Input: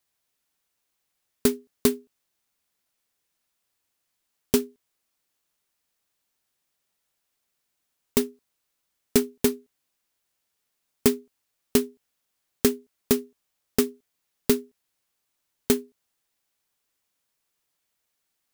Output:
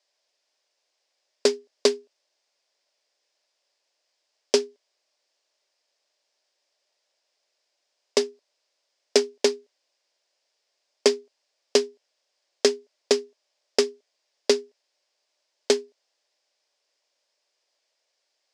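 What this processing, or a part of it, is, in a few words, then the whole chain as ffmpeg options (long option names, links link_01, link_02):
phone speaker on a table: -af "highpass=frequency=370:width=0.5412,highpass=frequency=370:width=1.3066,equalizer=frequency=590:width_type=q:width=4:gain=10,equalizer=frequency=1300:width_type=q:width=4:gain=-6,equalizer=frequency=5000:width_type=q:width=4:gain=8,lowpass=frequency=6900:width=0.5412,lowpass=frequency=6900:width=1.3066,volume=4dB"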